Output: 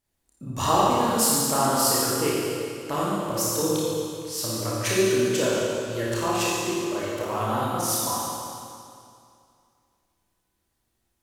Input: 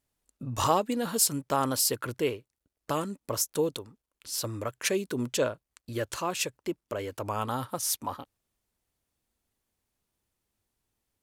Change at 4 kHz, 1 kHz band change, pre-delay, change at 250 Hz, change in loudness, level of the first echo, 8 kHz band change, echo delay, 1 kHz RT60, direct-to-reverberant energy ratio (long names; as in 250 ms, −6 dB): +6.0 dB, +7.0 dB, 26 ms, +7.0 dB, +5.5 dB, no echo audible, +5.5 dB, no echo audible, 2.4 s, −7.5 dB